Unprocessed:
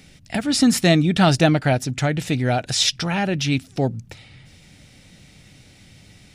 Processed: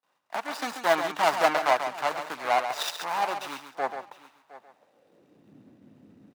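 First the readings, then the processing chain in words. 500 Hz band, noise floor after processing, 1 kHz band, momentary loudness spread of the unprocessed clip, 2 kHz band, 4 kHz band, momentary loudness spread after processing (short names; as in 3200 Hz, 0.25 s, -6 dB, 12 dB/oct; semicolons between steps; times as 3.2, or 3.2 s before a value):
-4.5 dB, -69 dBFS, +1.5 dB, 9 LU, -4.0 dB, -11.5 dB, 12 LU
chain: median filter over 41 samples; gate with hold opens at -44 dBFS; low shelf 150 Hz -9 dB; echo 0.713 s -17.5 dB; in parallel at 0 dB: compressor, threshold -33 dBFS, peak gain reduction 17.5 dB; on the sum: high-pass sweep 950 Hz -> 250 Hz, 4.59–5.52; on a send: echo 0.137 s -7.5 dB; on the sum: three-band expander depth 40%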